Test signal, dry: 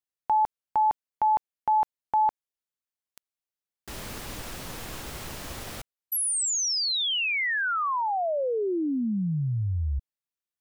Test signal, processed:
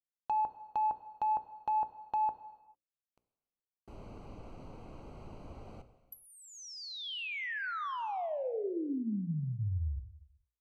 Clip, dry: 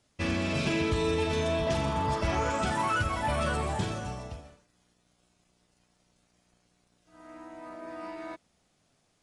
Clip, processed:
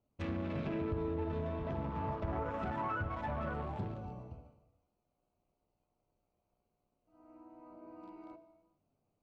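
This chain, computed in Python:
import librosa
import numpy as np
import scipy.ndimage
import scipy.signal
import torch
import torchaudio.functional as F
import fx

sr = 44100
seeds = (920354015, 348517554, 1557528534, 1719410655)

y = fx.wiener(x, sr, points=25)
y = fx.env_lowpass_down(y, sr, base_hz=1300.0, full_db=-24.5)
y = fx.hum_notches(y, sr, base_hz=60, count=9)
y = fx.rev_gated(y, sr, seeds[0], gate_ms=470, shape='falling', drr_db=11.0)
y = y * librosa.db_to_amplitude(-7.0)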